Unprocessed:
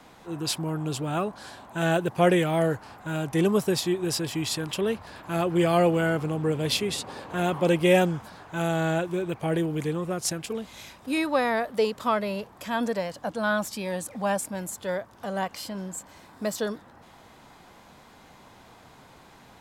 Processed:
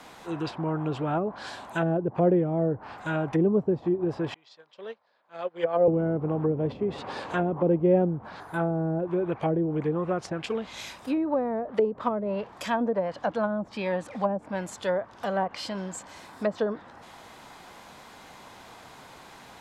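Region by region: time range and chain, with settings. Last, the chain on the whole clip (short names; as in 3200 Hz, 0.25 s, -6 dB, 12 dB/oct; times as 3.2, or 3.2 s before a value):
4.34–5.88 speaker cabinet 290–4900 Hz, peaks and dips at 310 Hz -9 dB, 540 Hz +7 dB, 2700 Hz -5 dB + upward expander 2.5:1, over -35 dBFS
8.4–9 bell 2800 Hz -12 dB 0.82 oct + notch 590 Hz, Q 7.7 + careless resampling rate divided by 4×, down filtered, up hold
whole clip: treble ducked by the level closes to 430 Hz, closed at -22 dBFS; low shelf 330 Hz -7.5 dB; gain +5.5 dB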